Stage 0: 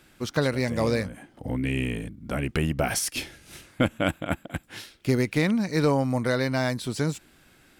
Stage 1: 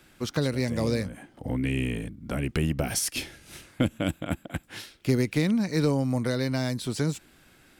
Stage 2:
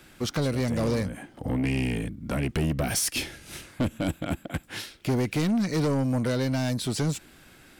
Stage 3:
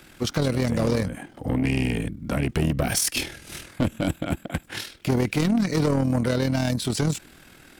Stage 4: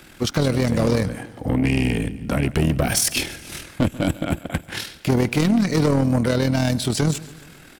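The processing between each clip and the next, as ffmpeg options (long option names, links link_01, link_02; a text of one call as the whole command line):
ffmpeg -i in.wav -filter_complex "[0:a]acrossover=split=450|3000[link_01][link_02][link_03];[link_02]acompressor=threshold=-34dB:ratio=6[link_04];[link_01][link_04][link_03]amix=inputs=3:normalize=0" out.wav
ffmpeg -i in.wav -af "asoftclip=type=tanh:threshold=-25dB,volume=4.5dB" out.wav
ffmpeg -i in.wav -af "tremolo=f=40:d=0.571,volume=5.5dB" out.wav
ffmpeg -i in.wav -af "aecho=1:1:139|278|417|556:0.119|0.063|0.0334|0.0177,volume=3.5dB" out.wav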